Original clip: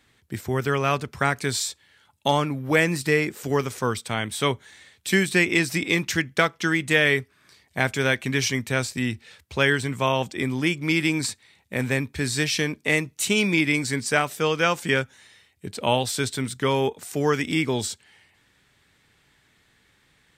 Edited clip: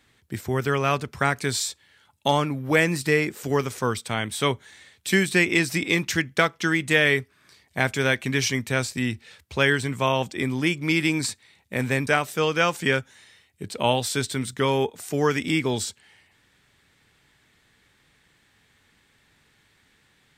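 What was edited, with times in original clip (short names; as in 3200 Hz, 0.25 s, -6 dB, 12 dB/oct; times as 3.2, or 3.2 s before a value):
12.07–14.1 cut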